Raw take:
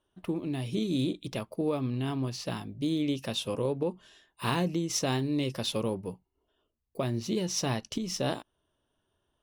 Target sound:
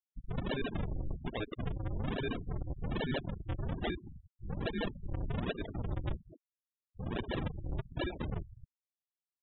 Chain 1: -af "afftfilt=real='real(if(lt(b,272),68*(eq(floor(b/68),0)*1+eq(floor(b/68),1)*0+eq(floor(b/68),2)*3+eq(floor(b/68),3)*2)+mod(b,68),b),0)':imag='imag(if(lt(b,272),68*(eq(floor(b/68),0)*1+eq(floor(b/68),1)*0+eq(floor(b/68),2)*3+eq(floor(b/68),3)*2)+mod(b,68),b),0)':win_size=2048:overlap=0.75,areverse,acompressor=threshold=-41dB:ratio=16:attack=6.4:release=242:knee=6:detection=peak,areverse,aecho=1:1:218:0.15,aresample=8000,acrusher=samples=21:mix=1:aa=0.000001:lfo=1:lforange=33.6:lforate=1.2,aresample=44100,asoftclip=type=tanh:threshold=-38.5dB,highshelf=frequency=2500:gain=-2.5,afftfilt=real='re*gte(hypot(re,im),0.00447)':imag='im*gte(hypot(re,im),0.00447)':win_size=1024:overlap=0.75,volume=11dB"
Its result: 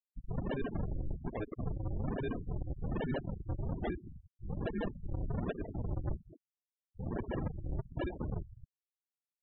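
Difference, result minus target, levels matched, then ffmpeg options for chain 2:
4,000 Hz band −11.5 dB
-af "afftfilt=real='real(if(lt(b,272),68*(eq(floor(b/68),0)*1+eq(floor(b/68),1)*0+eq(floor(b/68),2)*3+eq(floor(b/68),3)*2)+mod(b,68),b),0)':imag='imag(if(lt(b,272),68*(eq(floor(b/68),0)*1+eq(floor(b/68),1)*0+eq(floor(b/68),2)*3+eq(floor(b/68),3)*2)+mod(b,68),b),0)':win_size=2048:overlap=0.75,areverse,acompressor=threshold=-41dB:ratio=16:attack=6.4:release=242:knee=6:detection=peak,areverse,aecho=1:1:218:0.15,aresample=8000,acrusher=samples=21:mix=1:aa=0.000001:lfo=1:lforange=33.6:lforate=1.2,aresample=44100,asoftclip=type=tanh:threshold=-38.5dB,highshelf=frequency=2500:gain=8.5,afftfilt=real='re*gte(hypot(re,im),0.00447)':imag='im*gte(hypot(re,im),0.00447)':win_size=1024:overlap=0.75,volume=11dB"

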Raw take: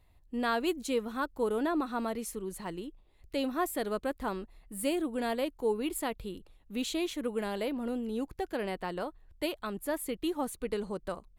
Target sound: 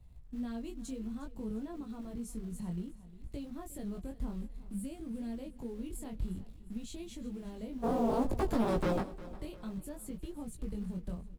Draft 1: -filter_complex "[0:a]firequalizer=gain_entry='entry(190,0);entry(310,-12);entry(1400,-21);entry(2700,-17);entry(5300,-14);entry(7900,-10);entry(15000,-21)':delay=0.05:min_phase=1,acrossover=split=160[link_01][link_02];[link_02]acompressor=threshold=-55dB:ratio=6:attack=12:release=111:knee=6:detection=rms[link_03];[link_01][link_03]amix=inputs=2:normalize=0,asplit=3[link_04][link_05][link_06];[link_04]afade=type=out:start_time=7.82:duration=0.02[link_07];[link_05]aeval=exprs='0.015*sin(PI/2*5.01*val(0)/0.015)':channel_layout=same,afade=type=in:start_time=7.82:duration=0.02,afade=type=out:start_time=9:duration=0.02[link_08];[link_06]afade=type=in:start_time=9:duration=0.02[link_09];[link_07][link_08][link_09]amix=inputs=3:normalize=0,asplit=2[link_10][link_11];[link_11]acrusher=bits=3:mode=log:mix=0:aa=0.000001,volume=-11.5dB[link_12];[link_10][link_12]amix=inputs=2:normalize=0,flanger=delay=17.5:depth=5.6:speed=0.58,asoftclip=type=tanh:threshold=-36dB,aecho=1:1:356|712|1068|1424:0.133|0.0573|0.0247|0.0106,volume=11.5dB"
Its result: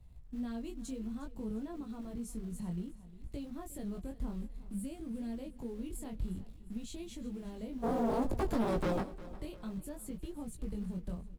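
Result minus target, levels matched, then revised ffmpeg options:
soft clipping: distortion +16 dB
-filter_complex "[0:a]firequalizer=gain_entry='entry(190,0);entry(310,-12);entry(1400,-21);entry(2700,-17);entry(5300,-14);entry(7900,-10);entry(15000,-21)':delay=0.05:min_phase=1,acrossover=split=160[link_01][link_02];[link_02]acompressor=threshold=-55dB:ratio=6:attack=12:release=111:knee=6:detection=rms[link_03];[link_01][link_03]amix=inputs=2:normalize=0,asplit=3[link_04][link_05][link_06];[link_04]afade=type=out:start_time=7.82:duration=0.02[link_07];[link_05]aeval=exprs='0.015*sin(PI/2*5.01*val(0)/0.015)':channel_layout=same,afade=type=in:start_time=7.82:duration=0.02,afade=type=out:start_time=9:duration=0.02[link_08];[link_06]afade=type=in:start_time=9:duration=0.02[link_09];[link_07][link_08][link_09]amix=inputs=3:normalize=0,asplit=2[link_10][link_11];[link_11]acrusher=bits=3:mode=log:mix=0:aa=0.000001,volume=-11.5dB[link_12];[link_10][link_12]amix=inputs=2:normalize=0,flanger=delay=17.5:depth=5.6:speed=0.58,asoftclip=type=tanh:threshold=-27dB,aecho=1:1:356|712|1068|1424:0.133|0.0573|0.0247|0.0106,volume=11.5dB"

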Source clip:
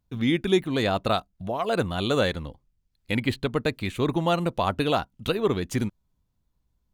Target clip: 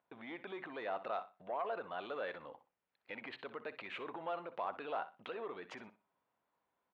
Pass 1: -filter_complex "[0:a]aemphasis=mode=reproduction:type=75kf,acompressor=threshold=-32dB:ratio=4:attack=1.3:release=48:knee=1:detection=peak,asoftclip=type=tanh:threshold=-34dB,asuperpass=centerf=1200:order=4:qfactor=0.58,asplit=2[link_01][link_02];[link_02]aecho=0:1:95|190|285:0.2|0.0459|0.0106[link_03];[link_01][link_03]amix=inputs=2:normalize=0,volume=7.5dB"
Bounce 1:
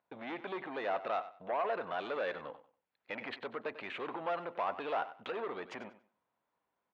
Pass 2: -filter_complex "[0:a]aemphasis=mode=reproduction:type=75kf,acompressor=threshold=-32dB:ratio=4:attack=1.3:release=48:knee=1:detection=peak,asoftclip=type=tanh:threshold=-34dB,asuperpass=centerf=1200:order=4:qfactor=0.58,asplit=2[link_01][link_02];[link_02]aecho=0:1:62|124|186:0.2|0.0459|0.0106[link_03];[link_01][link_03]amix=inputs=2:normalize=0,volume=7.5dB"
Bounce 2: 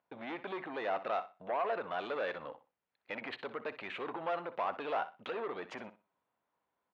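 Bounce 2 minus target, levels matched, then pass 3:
downward compressor: peak gain reduction −8 dB
-filter_complex "[0:a]aemphasis=mode=reproduction:type=75kf,acompressor=threshold=-42.5dB:ratio=4:attack=1.3:release=48:knee=1:detection=peak,asoftclip=type=tanh:threshold=-34dB,asuperpass=centerf=1200:order=4:qfactor=0.58,asplit=2[link_01][link_02];[link_02]aecho=0:1:62|124|186:0.2|0.0459|0.0106[link_03];[link_01][link_03]amix=inputs=2:normalize=0,volume=7.5dB"

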